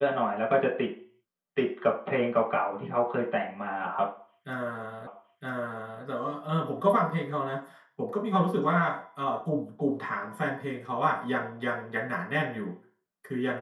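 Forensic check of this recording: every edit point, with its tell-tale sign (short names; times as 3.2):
5.07 repeat of the last 0.96 s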